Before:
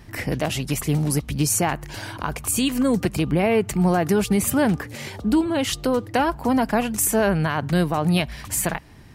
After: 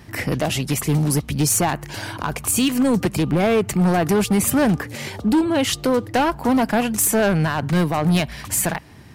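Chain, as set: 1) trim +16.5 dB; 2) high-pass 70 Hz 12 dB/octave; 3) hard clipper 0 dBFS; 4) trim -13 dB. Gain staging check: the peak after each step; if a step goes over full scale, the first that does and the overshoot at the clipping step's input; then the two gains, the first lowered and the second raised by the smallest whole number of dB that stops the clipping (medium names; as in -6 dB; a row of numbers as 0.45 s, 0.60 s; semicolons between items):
+7.0 dBFS, +8.0 dBFS, 0.0 dBFS, -13.0 dBFS; step 1, 8.0 dB; step 1 +8.5 dB, step 4 -5 dB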